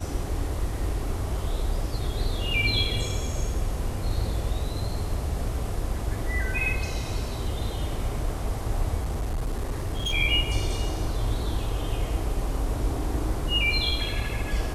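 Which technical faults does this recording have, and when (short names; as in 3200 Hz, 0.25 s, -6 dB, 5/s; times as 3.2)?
8.99–10.14 clipped -24 dBFS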